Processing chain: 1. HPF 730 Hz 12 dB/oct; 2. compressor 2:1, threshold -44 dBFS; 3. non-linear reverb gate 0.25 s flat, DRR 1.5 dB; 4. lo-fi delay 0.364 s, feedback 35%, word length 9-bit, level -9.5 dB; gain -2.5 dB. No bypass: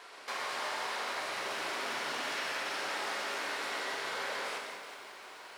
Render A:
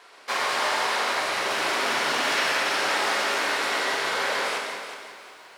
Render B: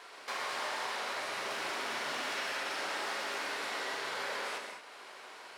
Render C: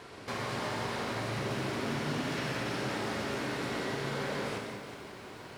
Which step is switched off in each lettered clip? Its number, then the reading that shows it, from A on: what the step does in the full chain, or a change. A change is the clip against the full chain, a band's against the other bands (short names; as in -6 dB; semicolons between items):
2, mean gain reduction 9.0 dB; 4, momentary loudness spread change +2 LU; 1, 125 Hz band +27.5 dB